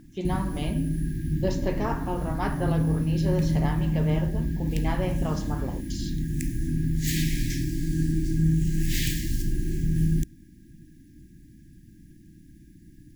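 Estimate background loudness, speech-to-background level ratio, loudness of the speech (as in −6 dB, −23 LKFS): −28.0 LKFS, −4.5 dB, −32.5 LKFS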